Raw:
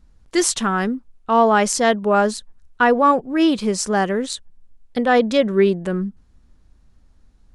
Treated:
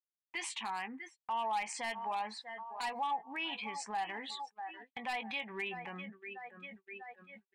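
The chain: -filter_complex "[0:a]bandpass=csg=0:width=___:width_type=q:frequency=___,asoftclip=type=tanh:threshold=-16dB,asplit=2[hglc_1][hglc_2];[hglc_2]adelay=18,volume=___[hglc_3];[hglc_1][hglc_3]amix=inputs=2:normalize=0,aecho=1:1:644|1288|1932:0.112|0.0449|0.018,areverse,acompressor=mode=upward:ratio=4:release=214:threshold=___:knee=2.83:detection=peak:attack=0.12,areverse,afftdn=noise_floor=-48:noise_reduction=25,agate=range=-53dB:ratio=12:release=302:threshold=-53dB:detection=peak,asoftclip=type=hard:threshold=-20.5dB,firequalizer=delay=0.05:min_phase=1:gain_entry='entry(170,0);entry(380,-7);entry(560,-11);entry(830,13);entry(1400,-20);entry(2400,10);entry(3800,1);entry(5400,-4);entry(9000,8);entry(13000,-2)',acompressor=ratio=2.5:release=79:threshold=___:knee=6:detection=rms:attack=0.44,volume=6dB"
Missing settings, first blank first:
2.5, 1700, -10dB, -40dB, -45dB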